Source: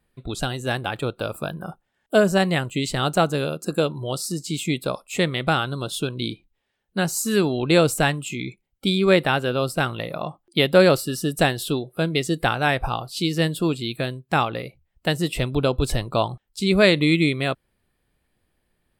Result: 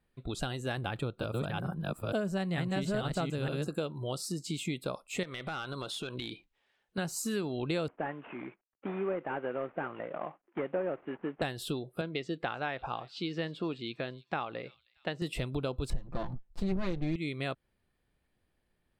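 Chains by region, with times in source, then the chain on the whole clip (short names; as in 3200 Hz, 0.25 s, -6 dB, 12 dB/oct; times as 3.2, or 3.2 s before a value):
0.77–3.68 reverse delay 0.452 s, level -1 dB + tone controls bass +6 dB, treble 0 dB
5.23–6.98 overdrive pedal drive 15 dB, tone 5500 Hz, clips at -8 dBFS + compressor 8:1, threshold -28 dBFS
7.88–11.42 CVSD 16 kbps + three-band isolator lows -20 dB, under 240 Hz, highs -14 dB, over 2100 Hz
12.01–15.22 HPF 310 Hz 6 dB/oct + air absorption 180 m + thin delay 0.314 s, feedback 44%, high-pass 4100 Hz, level -16 dB
15.9–17.16 minimum comb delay 5.8 ms + tilt -3.5 dB/oct
whole clip: high shelf 9300 Hz -9 dB; compressor 4:1, threshold -25 dBFS; gain -6 dB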